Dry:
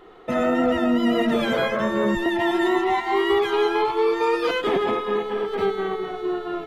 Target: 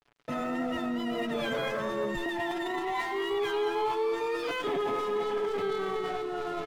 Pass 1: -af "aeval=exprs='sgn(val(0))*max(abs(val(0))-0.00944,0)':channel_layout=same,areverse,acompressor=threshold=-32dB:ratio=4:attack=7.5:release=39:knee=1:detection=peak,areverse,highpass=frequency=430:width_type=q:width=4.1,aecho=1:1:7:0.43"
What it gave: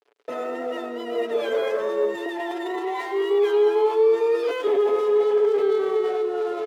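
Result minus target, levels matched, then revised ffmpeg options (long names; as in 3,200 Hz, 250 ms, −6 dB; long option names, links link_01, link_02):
500 Hz band +2.5 dB
-af "aeval=exprs='sgn(val(0))*max(abs(val(0))-0.00944,0)':channel_layout=same,areverse,acompressor=threshold=-32dB:ratio=4:attack=7.5:release=39:knee=1:detection=peak,areverse,aecho=1:1:7:0.43"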